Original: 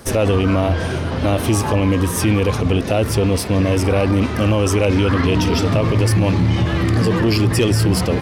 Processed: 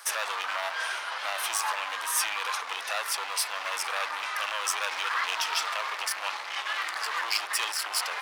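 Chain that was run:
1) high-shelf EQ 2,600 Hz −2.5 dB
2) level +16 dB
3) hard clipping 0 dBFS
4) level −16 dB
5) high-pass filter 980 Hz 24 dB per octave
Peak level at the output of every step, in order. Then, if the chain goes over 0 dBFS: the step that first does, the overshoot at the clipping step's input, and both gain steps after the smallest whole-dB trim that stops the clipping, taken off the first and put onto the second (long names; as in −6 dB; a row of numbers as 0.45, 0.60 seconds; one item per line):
−7.5, +8.5, 0.0, −16.0, −12.5 dBFS
step 2, 8.5 dB
step 2 +7 dB, step 4 −7 dB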